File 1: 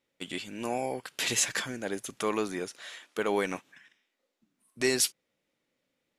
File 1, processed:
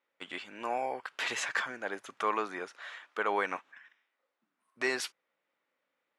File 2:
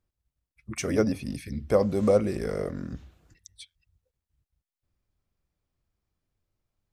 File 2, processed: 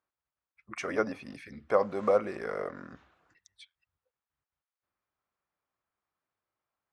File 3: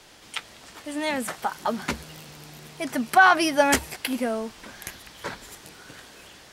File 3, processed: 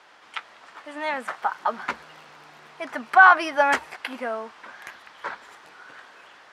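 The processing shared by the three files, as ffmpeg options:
ffmpeg -i in.wav -af "bandpass=frequency=1200:width_type=q:width=1.3:csg=0,volume=5dB" out.wav

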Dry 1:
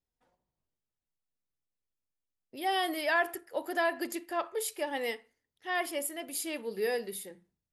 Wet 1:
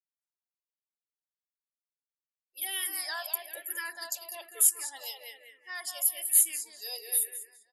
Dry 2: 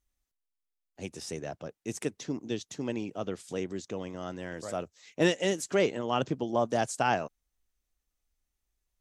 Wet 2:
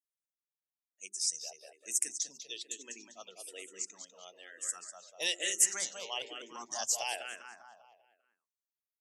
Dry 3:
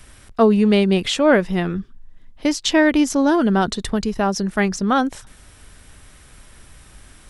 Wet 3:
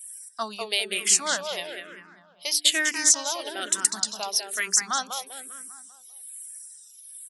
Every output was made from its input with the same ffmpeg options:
ffmpeg -i in.wav -filter_complex "[0:a]aderivative,afftdn=noise_reduction=25:noise_floor=-56,bass=frequency=250:gain=-3,treble=frequency=4000:gain=6,bandreject=frequency=50:width_type=h:width=6,bandreject=frequency=100:width_type=h:width=6,bandreject=frequency=150:width_type=h:width=6,bandreject=frequency=200:width_type=h:width=6,bandreject=frequency=250:width_type=h:width=6,bandreject=frequency=300:width_type=h:width=6,bandreject=frequency=350:width_type=h:width=6,bandreject=frequency=400:width_type=h:width=6,asplit=2[link_01][link_02];[link_02]adelay=198,lowpass=frequency=3600:poles=1,volume=-5dB,asplit=2[link_03][link_04];[link_04]adelay=198,lowpass=frequency=3600:poles=1,volume=0.5,asplit=2[link_05][link_06];[link_06]adelay=198,lowpass=frequency=3600:poles=1,volume=0.5,asplit=2[link_07][link_08];[link_08]adelay=198,lowpass=frequency=3600:poles=1,volume=0.5,asplit=2[link_09][link_10];[link_10]adelay=198,lowpass=frequency=3600:poles=1,volume=0.5,asplit=2[link_11][link_12];[link_12]adelay=198,lowpass=frequency=3600:poles=1,volume=0.5[link_13];[link_03][link_05][link_07][link_09][link_11][link_13]amix=inputs=6:normalize=0[link_14];[link_01][link_14]amix=inputs=2:normalize=0,asplit=2[link_15][link_16];[link_16]afreqshift=-1.1[link_17];[link_15][link_17]amix=inputs=2:normalize=1,volume=8dB" out.wav

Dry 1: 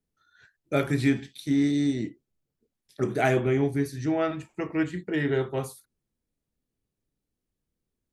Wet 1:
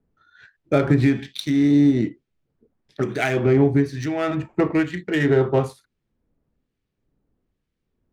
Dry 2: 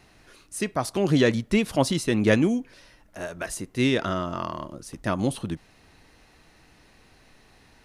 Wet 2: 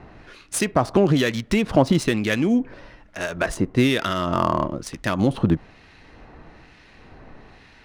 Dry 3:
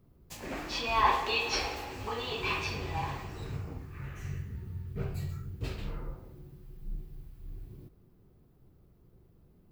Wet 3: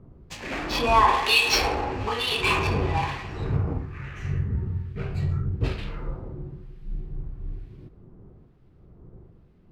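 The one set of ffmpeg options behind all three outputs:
ffmpeg -i in.wav -filter_complex "[0:a]equalizer=frequency=15000:width_type=o:width=1.2:gain=2.5,asplit=2[link_01][link_02];[link_02]alimiter=limit=-17.5dB:level=0:latency=1:release=117,volume=0.5dB[link_03];[link_01][link_03]amix=inputs=2:normalize=0,acompressor=threshold=-20dB:ratio=3,acrossover=split=1600[link_04][link_05];[link_04]aeval=exprs='val(0)*(1-0.7/2+0.7/2*cos(2*PI*1.1*n/s))':channel_layout=same[link_06];[link_05]aeval=exprs='val(0)*(1-0.7/2-0.7/2*cos(2*PI*1.1*n/s))':channel_layout=same[link_07];[link_06][link_07]amix=inputs=2:normalize=0,adynamicsmooth=sensitivity=8:basefreq=2800,volume=7.5dB" out.wav

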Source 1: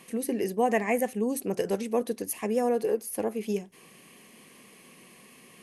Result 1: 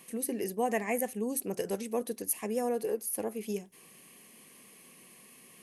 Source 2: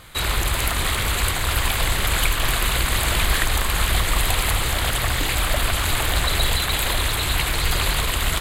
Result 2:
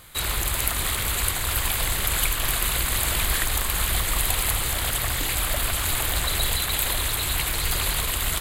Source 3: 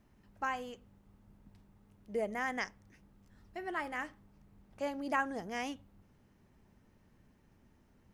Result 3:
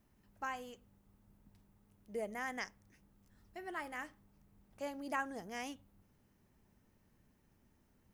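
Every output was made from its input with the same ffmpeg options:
ffmpeg -i in.wav -af "highshelf=frequency=8000:gain=11.5,volume=-5.5dB" out.wav

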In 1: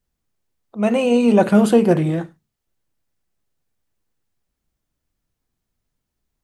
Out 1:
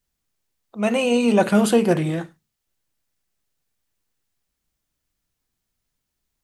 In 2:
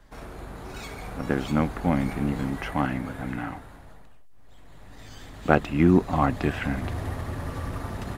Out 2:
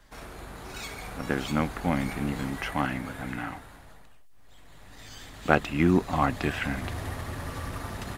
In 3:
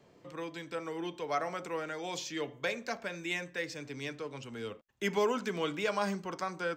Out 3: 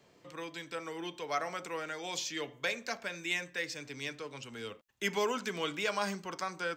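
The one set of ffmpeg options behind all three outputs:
ffmpeg -i in.wav -af "tiltshelf=frequency=1300:gain=-4" out.wav

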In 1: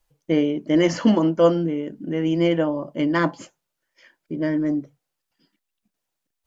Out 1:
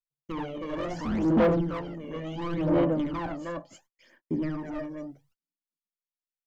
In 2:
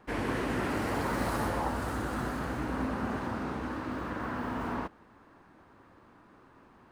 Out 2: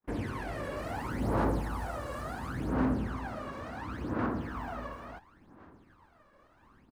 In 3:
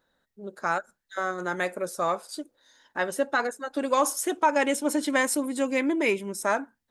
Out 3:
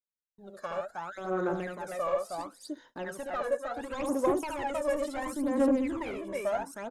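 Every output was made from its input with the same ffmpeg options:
ffmpeg -i in.wav -filter_complex "[0:a]aecho=1:1:57|70|315:0.15|0.668|0.668,acrossover=split=580|1100[link_01][link_02][link_03];[link_03]acompressor=threshold=-40dB:ratio=4[link_04];[link_01][link_02][link_04]amix=inputs=3:normalize=0,asoftclip=type=tanh:threshold=-21dB,agate=range=-39dB:threshold=-55dB:ratio=16:detection=peak,aphaser=in_gain=1:out_gain=1:delay=1.8:decay=0.71:speed=0.71:type=sinusoidal,volume=-7.5dB" out.wav

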